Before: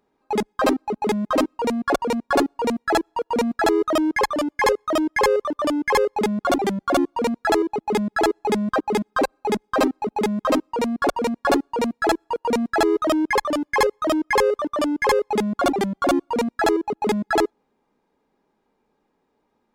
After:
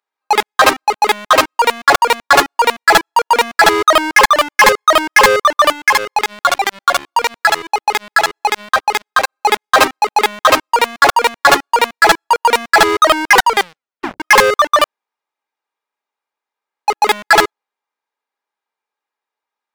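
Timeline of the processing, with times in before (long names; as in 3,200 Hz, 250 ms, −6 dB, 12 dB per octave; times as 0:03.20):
0:05.72–0:09.37: downward compressor 8 to 1, threshold −23 dBFS
0:13.30: tape stop 0.90 s
0:14.84–0:16.88: fill with room tone
whole clip: high-pass filter 1,200 Hz 12 dB per octave; leveller curve on the samples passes 5; level +4.5 dB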